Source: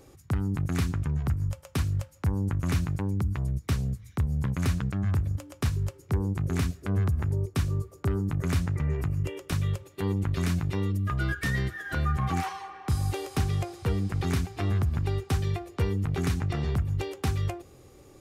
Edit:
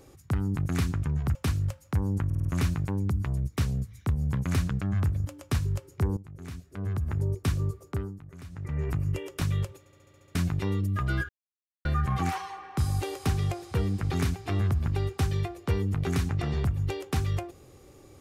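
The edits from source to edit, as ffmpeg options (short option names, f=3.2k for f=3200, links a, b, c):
-filter_complex "[0:a]asplit=19[a][b][c][d][e][f][g][h][i][j][k][l][m][n][o][p][q][r][s];[a]atrim=end=1.352[t];[b]atrim=start=1.658:end=2.612[u];[c]atrim=start=2.558:end=2.612[v];[d]atrim=start=2.558:end=2.612[w];[e]atrim=start=2.558:end=2.612[x];[f]atrim=start=2.558:end=6.28,asetpts=PTS-STARTPTS,afade=t=out:st=3.718:d=0.004:c=hsin:silence=0.141254[y];[g]atrim=start=6.28:end=8.3,asetpts=PTS-STARTPTS,afade=t=in:d=1.07:c=qua:silence=0.141254,afade=t=out:st=1.63:d=0.39:silence=0.125893[z];[h]atrim=start=8.3:end=8.61,asetpts=PTS-STARTPTS,volume=-18dB[aa];[i]atrim=start=8.61:end=9.972,asetpts=PTS-STARTPTS,afade=t=in:d=0.39:silence=0.125893[ab];[j]atrim=start=9.898:end=9.972[ac];[k]atrim=start=9.898:end=9.972[ad];[l]atrim=start=9.898:end=9.972[ae];[m]atrim=start=9.898:end=9.972[af];[n]atrim=start=9.898:end=9.972[ag];[o]atrim=start=9.898:end=9.972[ah];[p]atrim=start=9.898:end=9.972[ai];[q]atrim=start=10.458:end=11.4,asetpts=PTS-STARTPTS,afade=t=out:st=0.938:d=0.004:c=hsin[aj];[r]atrim=start=11.4:end=11.96,asetpts=PTS-STARTPTS,volume=0[ak];[s]atrim=start=11.96,asetpts=PTS-STARTPTS,afade=t=in:d=0.004:c=hsin[al];[t][u]acrossfade=d=0.004:c1=hsin:c2=hsin[am];[am][v]acrossfade=d=0.004:c1=hsin:c2=hsin[an];[an][w]acrossfade=d=0.004:c1=hsin:c2=hsin[ao];[ao][x]acrossfade=d=0.004:c1=hsin:c2=hsin[ap];[y][z][aa][ab]concat=n=4:v=0:a=1[aq];[ap][aq]acrossfade=d=0.004:c1=hsin:c2=hsin[ar];[ar][ac]acrossfade=d=0.004:c1=hsin:c2=hsin[as];[as][ad]acrossfade=d=0.004:c1=hsin:c2=hsin[at];[at][ae]acrossfade=d=0.004:c1=hsin:c2=hsin[au];[au][af]acrossfade=d=0.004:c1=hsin:c2=hsin[av];[av][ag]acrossfade=d=0.004:c1=hsin:c2=hsin[aw];[aw][ah]acrossfade=d=0.004:c1=hsin:c2=hsin[ax];[ax][ai]acrossfade=d=0.004:c1=hsin:c2=hsin[ay];[aj][ak][al]concat=n=3:v=0:a=1[az];[ay][az]acrossfade=d=0.004:c1=hsin:c2=hsin"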